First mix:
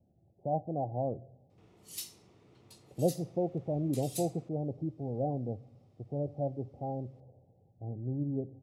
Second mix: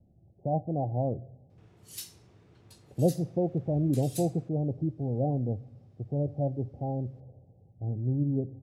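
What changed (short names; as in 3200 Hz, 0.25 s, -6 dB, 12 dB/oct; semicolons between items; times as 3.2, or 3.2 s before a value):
speech: add tilt -2.5 dB/oct; background: add bell 1600 Hz +10.5 dB 0.2 oct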